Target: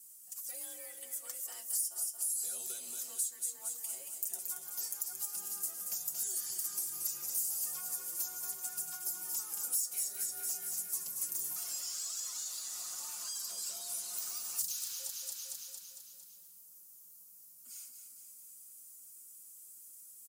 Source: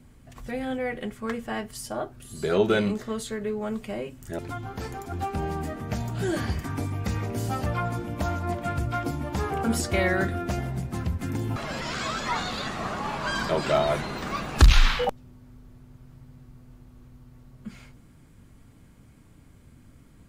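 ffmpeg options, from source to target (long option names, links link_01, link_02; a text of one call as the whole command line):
ffmpeg -i in.wav -filter_complex "[0:a]acrossover=split=370|3000[link_01][link_02][link_03];[link_02]acompressor=threshold=-31dB:ratio=6[link_04];[link_01][link_04][link_03]amix=inputs=3:normalize=0,aderivative,asplit=2[link_05][link_06];[link_06]aecho=0:1:227|454|681|908|1135|1362|1589:0.398|0.223|0.125|0.0699|0.0392|0.0219|0.0123[link_07];[link_05][link_07]amix=inputs=2:normalize=0,asoftclip=type=tanh:threshold=-30.5dB,bandreject=frequency=1600:width=20,afreqshift=41,highpass=89,equalizer=frequency=2100:width_type=o:width=0.48:gain=-7,aecho=1:1:5.6:0.73,acompressor=threshold=-45dB:ratio=5,aexciter=amount=7.4:drive=4:freq=5200,volume=-4.5dB" out.wav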